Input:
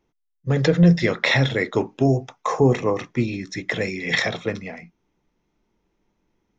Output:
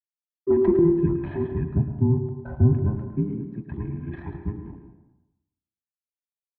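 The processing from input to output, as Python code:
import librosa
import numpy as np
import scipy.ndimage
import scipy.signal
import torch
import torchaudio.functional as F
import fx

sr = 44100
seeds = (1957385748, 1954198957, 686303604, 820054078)

y = fx.band_invert(x, sr, width_hz=500)
y = fx.backlash(y, sr, play_db=-30.5)
y = fx.bandpass_q(y, sr, hz=fx.steps((0.0, 330.0), (0.79, 130.0)), q=1.4)
y = fx.air_absorb(y, sr, metres=480.0)
y = y + 10.0 ** (-11.0 / 20.0) * np.pad(y, (int(108 * sr / 1000.0), 0))[:len(y)]
y = fx.rev_plate(y, sr, seeds[0], rt60_s=0.93, hf_ratio=0.55, predelay_ms=120, drr_db=8.5)
y = y * librosa.db_to_amplitude(3.5)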